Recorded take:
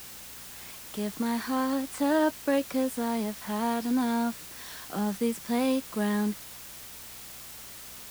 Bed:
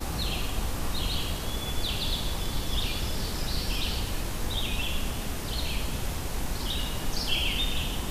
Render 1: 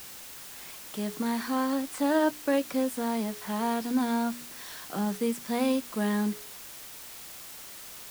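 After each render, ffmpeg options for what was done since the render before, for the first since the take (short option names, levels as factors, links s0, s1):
-af "bandreject=f=60:t=h:w=4,bandreject=f=120:t=h:w=4,bandreject=f=180:t=h:w=4,bandreject=f=240:t=h:w=4,bandreject=f=300:t=h:w=4,bandreject=f=360:t=h:w=4,bandreject=f=420:t=h:w=4"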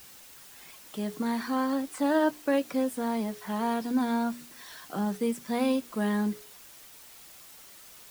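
-af "afftdn=nr=7:nf=-45"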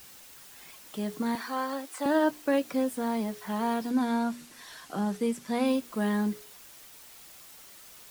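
-filter_complex "[0:a]asettb=1/sr,asplit=3[s0][s1][s2];[s0]atrim=end=1.354[s3];[s1]atrim=start=1.35:end=2.06,asetpts=PTS-STARTPTS,afade=t=in:d=0.004:c=qsin,afade=t=out:st=0.706:d=0.004:c=qsin,highpass=440[s4];[s2]atrim=start=2.056[s5];[s3][s4]acrossfade=d=0.004:c1=hsin:c2=qsin[s6];[s6][s5]acrossfade=d=0.004:c1=qsin:c2=hsin,asettb=1/sr,asplit=3[s7][s8][s9];[s7]atrim=end=3.904[s10];[s8]atrim=start=3.9:end=5.66,asetpts=PTS-STARTPTS,afade=t=in:d=0.004:c=qsin,afade=t=out:st=1.756:d=0.004:c=qsin,lowpass=12000[s11];[s9]atrim=start=5.656[s12];[s10][s11]acrossfade=d=0.004:c1=hsin:c2=qsin[s13];[s13][s12]acrossfade=d=0.004:c1=qsin:c2=hsin"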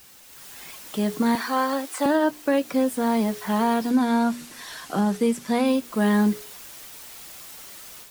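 -af "alimiter=limit=0.0944:level=0:latency=1:release=499,dynaudnorm=f=250:g=3:m=2.66"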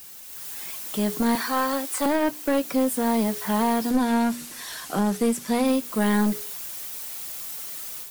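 -af "crystalizer=i=1:c=0,aeval=exprs='clip(val(0),-1,0.075)':c=same"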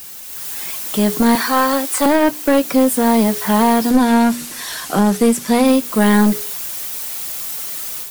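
-af "volume=2.82"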